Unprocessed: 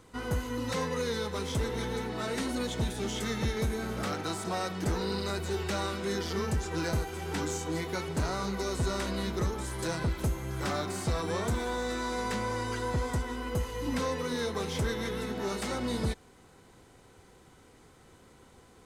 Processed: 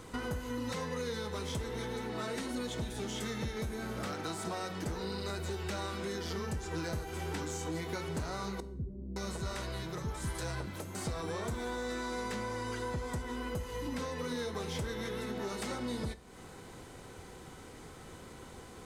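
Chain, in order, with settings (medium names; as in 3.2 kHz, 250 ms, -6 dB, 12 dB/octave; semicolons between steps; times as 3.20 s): compression 6:1, threshold -43 dBFS, peak gain reduction 15.5 dB; 8.60–10.95 s: bands offset in time lows, highs 560 ms, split 330 Hz; plate-style reverb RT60 0.61 s, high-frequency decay 0.85×, DRR 12.5 dB; trim +7 dB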